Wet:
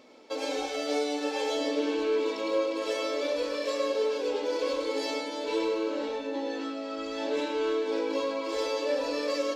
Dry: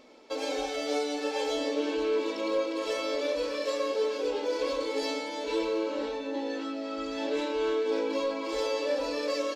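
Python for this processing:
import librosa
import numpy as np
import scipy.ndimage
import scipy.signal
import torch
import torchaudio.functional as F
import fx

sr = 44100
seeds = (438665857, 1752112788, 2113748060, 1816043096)

y = scipy.signal.sosfilt(scipy.signal.butter(2, 61.0, 'highpass', fs=sr, output='sos'), x)
y = y + 10.0 ** (-9.0 / 20.0) * np.pad(y, (int(103 * sr / 1000.0), 0))[:len(y)]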